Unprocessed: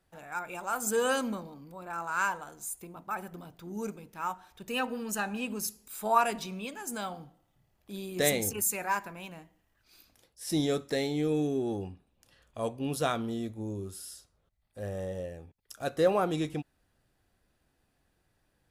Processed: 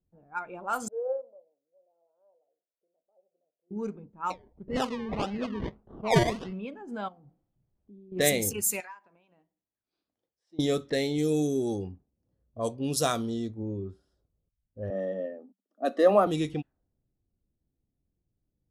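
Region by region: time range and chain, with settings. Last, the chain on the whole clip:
0.88–3.71 Butterworth band-pass 580 Hz, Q 3.1 + upward expander, over -43 dBFS
4.3–6.53 decimation with a swept rate 26×, swing 60% 1.7 Hz + air absorption 54 m
7.08–8.12 switching spikes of -45 dBFS + compressor 10:1, threshold -48 dBFS
8.8–10.59 weighting filter ITU-R 468 + compressor 4:1, threshold -43 dBFS
11.18–13.63 HPF 41 Hz + resonant high shelf 3900 Hz +7.5 dB, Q 1.5
14.9–16.27 rippled Chebyshev high-pass 190 Hz, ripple 3 dB + high shelf 5000 Hz -2.5 dB + small resonant body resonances 250/620/1200/1800 Hz, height 8 dB, ringing for 25 ms
whole clip: spectral noise reduction 7 dB; low-pass opened by the level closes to 300 Hz, open at -26.5 dBFS; gain +2.5 dB

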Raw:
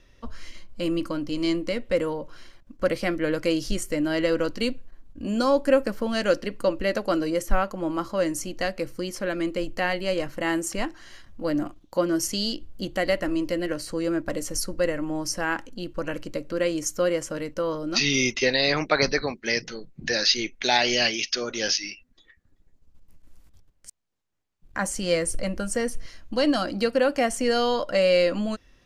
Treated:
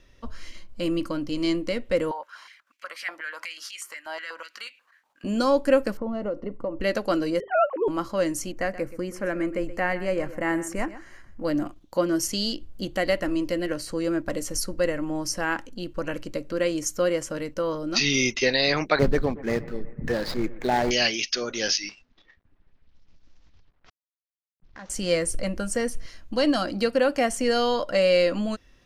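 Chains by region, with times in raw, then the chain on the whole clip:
2.11–5.24 compressor 4:1, threshold -31 dBFS + stepped high-pass 8.2 Hz 860–2400 Hz
5.97–6.81 polynomial smoothing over 65 samples + compressor 5:1, threshold -25 dBFS
7.4–7.88 sine-wave speech + LPF 1200 Hz 6 dB/oct + notches 50/100/150/200/250/300/350/400 Hz
8.52–11.45 EQ curve 2200 Hz 0 dB, 3500 Hz -16 dB, 6900 Hz -5 dB + echo 0.126 s -15 dB
18.99–20.91 median filter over 15 samples + tilt -2.5 dB/oct + analogue delay 0.122 s, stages 2048, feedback 67%, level -19 dB
21.89–24.9 CVSD 32 kbps + low-pass opened by the level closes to 1200 Hz, open at -42 dBFS + compressor 2:1, threshold -50 dBFS
whole clip: dry

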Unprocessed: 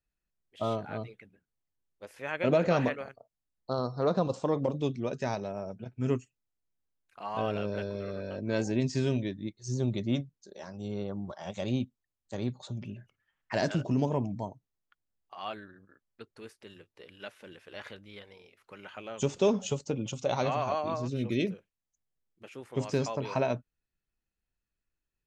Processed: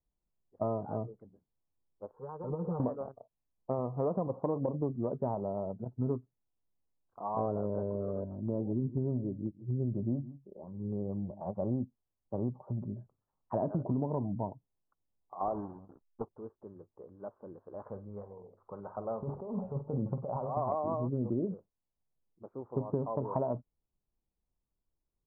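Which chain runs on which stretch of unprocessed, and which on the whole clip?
2.11–2.8 comb 6.6 ms, depth 79% + compressor 2.5:1, threshold -35 dBFS + fixed phaser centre 430 Hz, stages 8
8.24–11.41 bell 1900 Hz -12 dB 2.9 oct + echo 0.159 s -17.5 dB + stepped notch 4.1 Hz 490–4000 Hz
15.4–16.29 half-waves squared off + compressor 4:1, threshold -34 dBFS + dynamic EQ 750 Hz, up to +7 dB, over -51 dBFS, Q 0.74
17.87–20.57 bell 310 Hz -7 dB 0.56 oct + negative-ratio compressor -36 dBFS + flutter echo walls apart 8.4 m, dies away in 0.24 s
whole clip: steep low-pass 1100 Hz 48 dB/oct; compressor, threshold -30 dBFS; gain +2 dB

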